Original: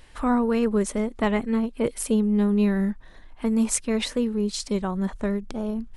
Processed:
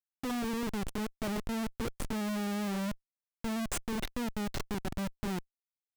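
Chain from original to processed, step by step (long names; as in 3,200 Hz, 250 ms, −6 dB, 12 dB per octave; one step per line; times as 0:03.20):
turntable brake at the end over 0.67 s
gate on every frequency bin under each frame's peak −15 dB strong
comparator with hysteresis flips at −25 dBFS
level −8.5 dB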